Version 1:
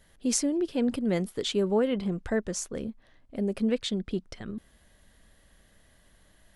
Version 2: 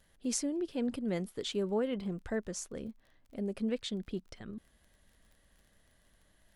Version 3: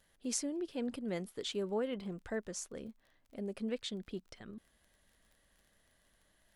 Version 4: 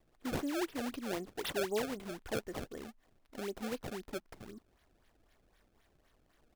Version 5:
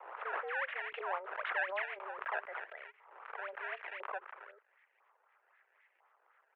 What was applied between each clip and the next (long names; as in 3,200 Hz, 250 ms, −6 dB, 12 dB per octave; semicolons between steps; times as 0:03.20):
surface crackle 24 per second −44 dBFS; level −7 dB
low-shelf EQ 260 Hz −6 dB; level −1.5 dB
comb filter 2.8 ms, depth 48%; sample-and-hold swept by an LFO 26×, swing 160% 3.9 Hz
auto-filter band-pass saw up 1 Hz 870–2,000 Hz; single-sideband voice off tune +190 Hz 170–2,700 Hz; background raised ahead of every attack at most 55 dB per second; level +9.5 dB